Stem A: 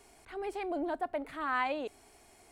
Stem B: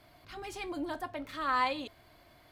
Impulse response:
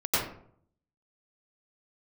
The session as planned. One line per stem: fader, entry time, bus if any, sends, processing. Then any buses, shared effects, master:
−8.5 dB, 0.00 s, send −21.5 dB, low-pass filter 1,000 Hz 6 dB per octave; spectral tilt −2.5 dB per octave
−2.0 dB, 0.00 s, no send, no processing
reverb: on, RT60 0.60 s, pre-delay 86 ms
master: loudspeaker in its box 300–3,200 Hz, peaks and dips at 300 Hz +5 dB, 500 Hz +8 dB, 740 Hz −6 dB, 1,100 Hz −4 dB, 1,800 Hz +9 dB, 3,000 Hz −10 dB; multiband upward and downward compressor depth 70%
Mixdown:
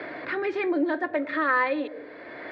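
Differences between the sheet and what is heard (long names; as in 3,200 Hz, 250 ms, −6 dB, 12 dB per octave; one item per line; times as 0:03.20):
stem A −8.5 dB → −2.0 dB
stem B −2.0 dB → +8.0 dB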